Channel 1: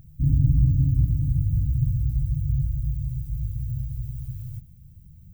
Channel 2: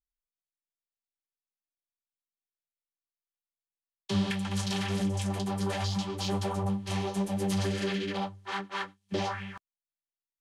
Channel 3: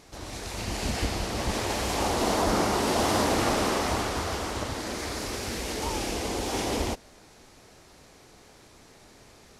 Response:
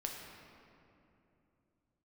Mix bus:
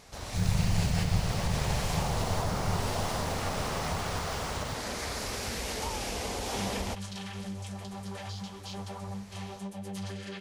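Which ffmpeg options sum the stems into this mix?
-filter_complex "[0:a]aeval=exprs='val(0)*sin(2*PI*39*n/s)':c=same,adelay=150,volume=0.531[s0];[1:a]adelay=2450,volume=0.398[s1];[2:a]acompressor=threshold=0.0355:ratio=6,volume=1[s2];[s0][s1][s2]amix=inputs=3:normalize=0,equalizer=f=320:t=o:w=0.46:g=-10.5"

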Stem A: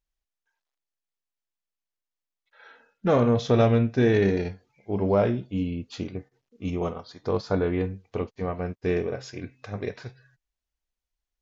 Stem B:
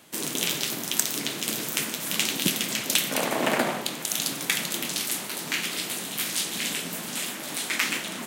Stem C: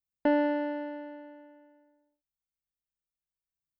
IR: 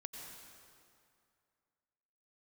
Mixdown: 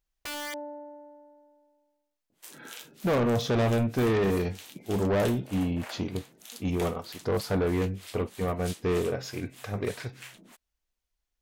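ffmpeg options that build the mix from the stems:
-filter_complex "[0:a]asoftclip=type=tanh:threshold=0.0631,volume=1.33[s0];[1:a]alimiter=limit=0.335:level=0:latency=1:release=252,acompressor=mode=upward:threshold=0.00316:ratio=2.5,acrossover=split=520[s1][s2];[s1]aeval=exprs='val(0)*(1-1/2+1/2*cos(2*PI*3.2*n/s))':c=same[s3];[s2]aeval=exprs='val(0)*(1-1/2-1/2*cos(2*PI*3.2*n/s))':c=same[s4];[s3][s4]amix=inputs=2:normalize=0,adelay=2300,volume=0.2[s5];[2:a]lowpass=f=760:t=q:w=6.5,aeval=exprs='(mod(8.41*val(0)+1,2)-1)/8.41':c=same,volume=0.237[s6];[s0][s5][s6]amix=inputs=3:normalize=0"

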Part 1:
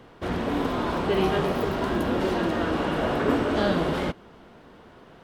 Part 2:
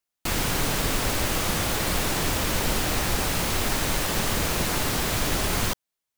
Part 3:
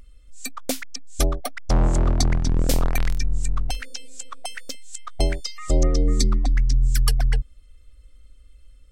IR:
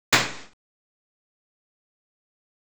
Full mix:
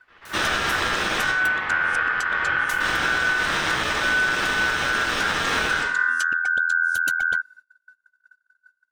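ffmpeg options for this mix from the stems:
-filter_complex "[0:a]acrossover=split=2700[s0][s1];[s1]acompressor=threshold=0.00355:ratio=4:attack=1:release=60[s2];[s0][s2]amix=inputs=2:normalize=0,volume=0.224,asplit=2[s3][s4];[s4]volume=0.266[s5];[1:a]volume=0.355,asplit=3[s6][s7][s8];[s6]atrim=end=1.23,asetpts=PTS-STARTPTS,afade=t=out:st=1.226:d=0.004:c=hsin[s9];[s7]atrim=start=1.23:end=2.72,asetpts=PTS-STARTPTS,volume=0[s10];[s8]atrim=start=2.72,asetpts=PTS-STARTPTS,afade=t=in:d=0.004:c=hsin[s11];[s9][s10][s11]concat=n=3:v=0:a=1,asplit=2[s12][s13];[s13]volume=0.501[s14];[2:a]agate=range=0.0631:threshold=0.00794:ratio=16:detection=peak,volume=0.794[s15];[s3][s12]amix=inputs=2:normalize=0,alimiter=level_in=2:limit=0.0631:level=0:latency=1,volume=0.501,volume=1[s16];[3:a]atrim=start_sample=2205[s17];[s5][s14]amix=inputs=2:normalize=0[s18];[s18][s17]afir=irnorm=-1:irlink=0[s19];[s15][s16][s19]amix=inputs=3:normalize=0,aeval=exprs='val(0)*sin(2*PI*1500*n/s)':c=same,alimiter=limit=0.266:level=0:latency=1:release=229"

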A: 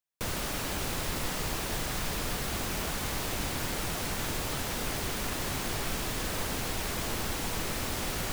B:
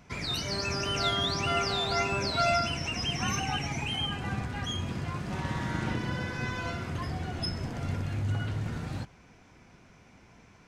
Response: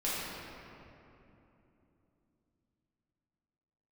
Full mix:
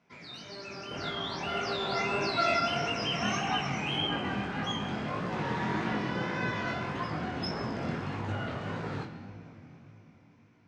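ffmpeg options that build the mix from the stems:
-filter_complex "[0:a]aphaser=in_gain=1:out_gain=1:delay=2.9:decay=0.5:speed=0.29:type=triangular,lowpass=f=1600:w=0.5412,lowpass=f=1600:w=1.3066,adelay=700,volume=0.944[s0];[1:a]dynaudnorm=f=310:g=11:m=3.98,volume=0.316,asplit=2[s1][s2];[s2]volume=0.299[s3];[2:a]atrim=start_sample=2205[s4];[s3][s4]afir=irnorm=-1:irlink=0[s5];[s0][s1][s5]amix=inputs=3:normalize=0,flanger=delay=17:depth=7.6:speed=1.7,highpass=170,lowpass=4800"

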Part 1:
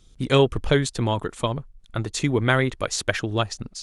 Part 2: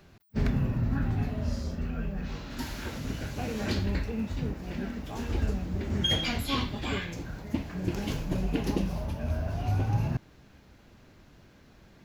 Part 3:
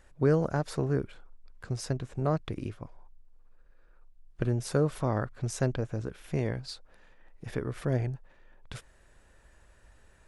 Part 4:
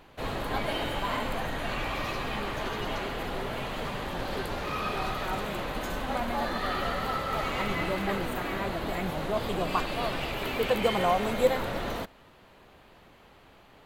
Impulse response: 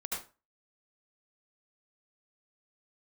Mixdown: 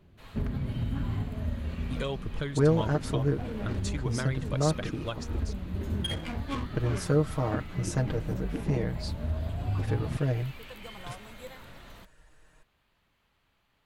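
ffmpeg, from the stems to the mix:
-filter_complex "[0:a]aphaser=in_gain=1:out_gain=1:delay=2.1:decay=0.42:speed=1.6:type=triangular,volume=1.88,asoftclip=hard,volume=0.531,adelay=1700,volume=0.335[s0];[1:a]equalizer=f=78:w=1.8:g=3.5,adynamicsmooth=sensitivity=2.5:basefreq=700,volume=0.794[s1];[2:a]aecho=1:1:6.5:0.81,adelay=2350,volume=0.75[s2];[3:a]equalizer=f=450:w=0.56:g=-10,volume=0.224[s3];[s0][s1][s3]amix=inputs=3:normalize=0,bandreject=f=760:w=19,alimiter=limit=0.0841:level=0:latency=1:release=427,volume=1[s4];[s2][s4]amix=inputs=2:normalize=0"

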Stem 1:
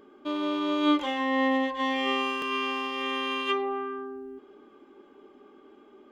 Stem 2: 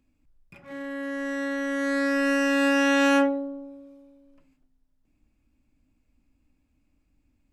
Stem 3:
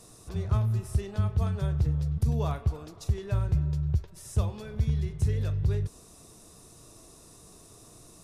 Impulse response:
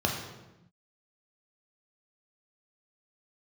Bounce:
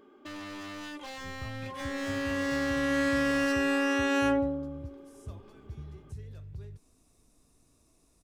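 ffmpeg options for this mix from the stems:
-filter_complex "[0:a]acompressor=threshold=0.0355:ratio=12,aeval=exprs='0.0224*(abs(mod(val(0)/0.0224+3,4)-2)-1)':c=same,volume=0.668[s0];[1:a]alimiter=limit=0.126:level=0:latency=1,adelay=1100,volume=0.891[s1];[2:a]adelay=900,volume=0.15[s2];[s0][s1][s2]amix=inputs=3:normalize=0"

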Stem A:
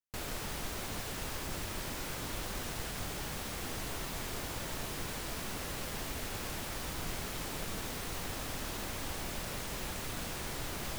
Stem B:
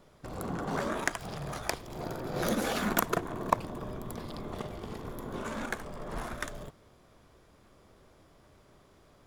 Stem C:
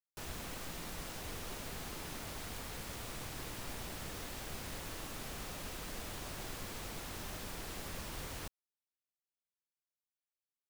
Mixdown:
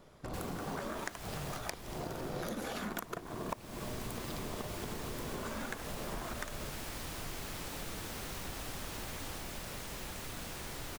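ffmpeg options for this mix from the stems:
-filter_complex "[0:a]adelay=200,volume=0.668,asplit=3[s0][s1][s2];[s0]atrim=end=1.57,asetpts=PTS-STARTPTS,afade=t=out:st=1.566:d=0.004:c=hsin[s3];[s1]atrim=start=1.57:end=3.5,asetpts=PTS-STARTPTS,volume=0[s4];[s2]atrim=start=3.5,asetpts=PTS-STARTPTS,afade=t=in:d=0.004:c=hsin[s5];[s3][s4][s5]concat=n=3:v=0:a=1[s6];[1:a]volume=1.06[s7];[2:a]adelay=900,volume=0.708[s8];[s6][s7][s8]amix=inputs=3:normalize=0,acompressor=threshold=0.0158:ratio=8"

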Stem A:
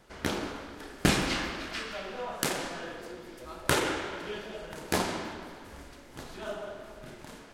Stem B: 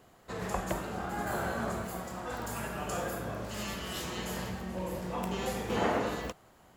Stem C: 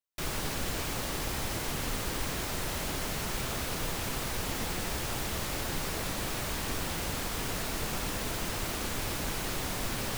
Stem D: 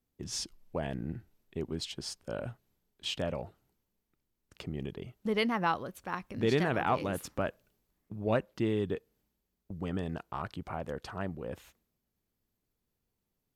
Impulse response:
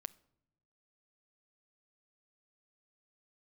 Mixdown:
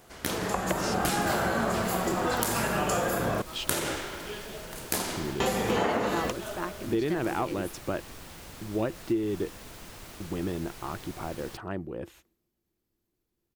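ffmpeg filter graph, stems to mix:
-filter_complex "[0:a]aemphasis=mode=production:type=50fm,volume=0.841[s0];[1:a]highpass=f=110:p=1,dynaudnorm=f=210:g=7:m=3.55,volume=1.41,asplit=3[s1][s2][s3];[s1]atrim=end=3.42,asetpts=PTS-STARTPTS,afade=t=out:st=3.416:d=0.004:c=hsin[s4];[s2]atrim=start=3.42:end=5.4,asetpts=PTS-STARTPTS,volume=0[s5];[s3]atrim=start=5.4,asetpts=PTS-STARTPTS,afade=t=in:d=0.004:c=hsin[s6];[s4][s5][s6]concat=n=3:v=0:a=1[s7];[2:a]adelay=1400,volume=0.266[s8];[3:a]equalizer=f=340:t=o:w=0.26:g=13.5,adelay=500,volume=1.06[s9];[s0][s7][s8][s9]amix=inputs=4:normalize=0,acompressor=threshold=0.0631:ratio=6"

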